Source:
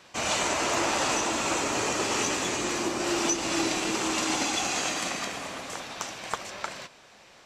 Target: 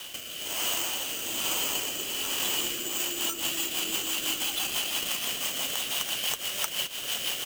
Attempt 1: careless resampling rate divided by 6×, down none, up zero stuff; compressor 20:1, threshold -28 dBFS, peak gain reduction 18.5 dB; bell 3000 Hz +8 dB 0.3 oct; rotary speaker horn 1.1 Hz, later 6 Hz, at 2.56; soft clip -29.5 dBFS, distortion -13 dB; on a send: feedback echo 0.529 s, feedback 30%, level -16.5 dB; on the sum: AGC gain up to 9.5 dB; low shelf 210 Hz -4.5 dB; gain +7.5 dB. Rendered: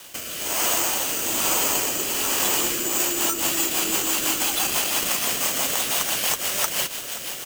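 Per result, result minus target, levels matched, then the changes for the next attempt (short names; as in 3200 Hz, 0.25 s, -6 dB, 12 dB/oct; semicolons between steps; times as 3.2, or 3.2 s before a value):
compressor: peak gain reduction -10.5 dB; 4000 Hz band -5.0 dB
change: compressor 20:1, threshold -39 dBFS, peak gain reduction 29 dB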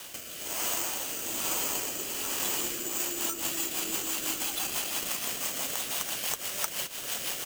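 4000 Hz band -5.0 dB
change: bell 3000 Hz +19 dB 0.3 oct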